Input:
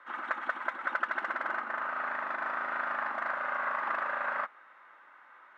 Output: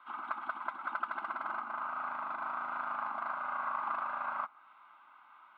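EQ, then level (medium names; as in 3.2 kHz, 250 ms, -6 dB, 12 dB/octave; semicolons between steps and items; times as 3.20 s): static phaser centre 1.8 kHz, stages 6; dynamic bell 3.1 kHz, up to -7 dB, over -56 dBFS, Q 1.2; 0.0 dB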